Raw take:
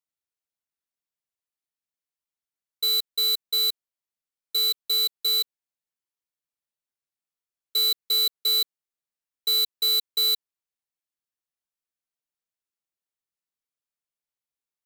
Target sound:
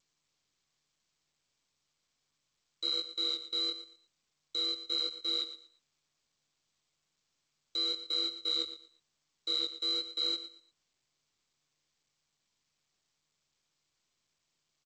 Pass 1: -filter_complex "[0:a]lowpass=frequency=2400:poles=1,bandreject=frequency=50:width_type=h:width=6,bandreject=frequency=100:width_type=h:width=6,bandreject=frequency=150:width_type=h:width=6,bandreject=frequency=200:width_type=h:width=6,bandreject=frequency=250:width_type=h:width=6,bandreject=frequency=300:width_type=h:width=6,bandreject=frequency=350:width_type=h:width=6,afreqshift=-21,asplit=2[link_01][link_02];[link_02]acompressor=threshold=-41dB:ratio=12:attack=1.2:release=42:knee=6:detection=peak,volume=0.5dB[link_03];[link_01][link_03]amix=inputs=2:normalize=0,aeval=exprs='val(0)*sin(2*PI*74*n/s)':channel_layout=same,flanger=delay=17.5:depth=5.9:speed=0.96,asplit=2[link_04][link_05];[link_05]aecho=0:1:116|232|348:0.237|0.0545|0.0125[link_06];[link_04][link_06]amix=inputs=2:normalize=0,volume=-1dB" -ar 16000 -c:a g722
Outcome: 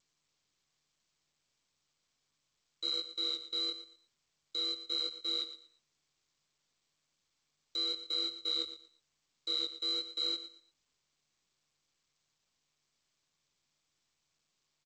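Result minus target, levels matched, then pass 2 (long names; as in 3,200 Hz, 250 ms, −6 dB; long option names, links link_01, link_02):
downward compressor: peak gain reduction +8 dB
-filter_complex "[0:a]lowpass=frequency=2400:poles=1,bandreject=frequency=50:width_type=h:width=6,bandreject=frequency=100:width_type=h:width=6,bandreject=frequency=150:width_type=h:width=6,bandreject=frequency=200:width_type=h:width=6,bandreject=frequency=250:width_type=h:width=6,bandreject=frequency=300:width_type=h:width=6,bandreject=frequency=350:width_type=h:width=6,afreqshift=-21,asplit=2[link_01][link_02];[link_02]acompressor=threshold=-32dB:ratio=12:attack=1.2:release=42:knee=6:detection=peak,volume=0.5dB[link_03];[link_01][link_03]amix=inputs=2:normalize=0,aeval=exprs='val(0)*sin(2*PI*74*n/s)':channel_layout=same,flanger=delay=17.5:depth=5.9:speed=0.96,asplit=2[link_04][link_05];[link_05]aecho=0:1:116|232|348:0.237|0.0545|0.0125[link_06];[link_04][link_06]amix=inputs=2:normalize=0,volume=-1dB" -ar 16000 -c:a g722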